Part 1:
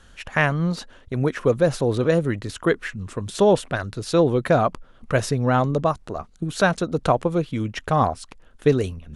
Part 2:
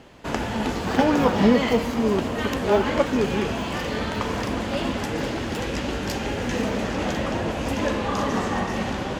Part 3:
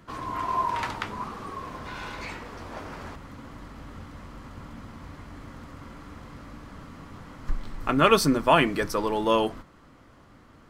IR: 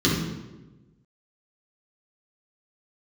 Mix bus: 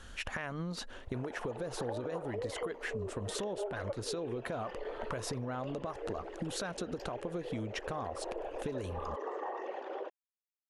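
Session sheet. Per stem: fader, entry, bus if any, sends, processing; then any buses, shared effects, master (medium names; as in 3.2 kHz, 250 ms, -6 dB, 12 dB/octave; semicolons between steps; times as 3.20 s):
+0.5 dB, 0.00 s, no send, peaking EQ 150 Hz -8.5 dB 0.34 oct; compression, threshold -24 dBFS, peak gain reduction 11.5 dB; peak limiter -20.5 dBFS, peak gain reduction 10.5 dB
-7.0 dB, 0.90 s, no send, resonances exaggerated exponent 2; steep high-pass 370 Hz 48 dB/octave
mute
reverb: none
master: compression 6:1, threshold -35 dBFS, peak gain reduction 13 dB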